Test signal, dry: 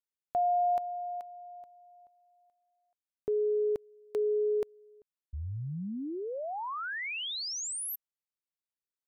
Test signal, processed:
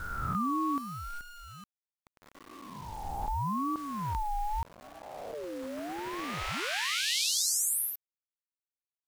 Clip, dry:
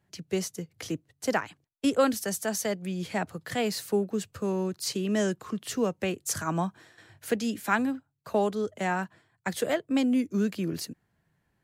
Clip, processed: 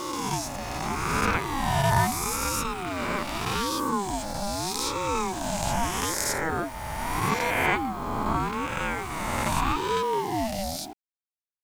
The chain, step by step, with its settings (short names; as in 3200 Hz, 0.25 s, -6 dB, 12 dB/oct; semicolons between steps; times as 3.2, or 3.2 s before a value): spectral swells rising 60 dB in 2.56 s; requantised 8-bit, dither none; ring modulator with a swept carrier 560 Hz, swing 30%, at 0.8 Hz